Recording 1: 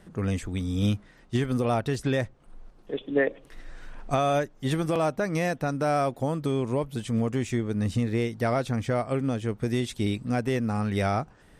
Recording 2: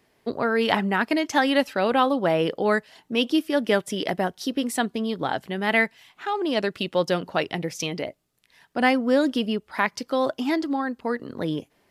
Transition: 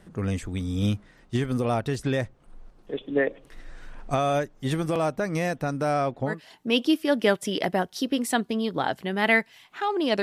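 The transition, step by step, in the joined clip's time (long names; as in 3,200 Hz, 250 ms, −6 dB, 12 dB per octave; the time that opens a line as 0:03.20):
recording 1
0:05.93–0:06.41: low-pass filter 7,600 Hz → 1,700 Hz
0:06.33: continue with recording 2 from 0:02.78, crossfade 0.16 s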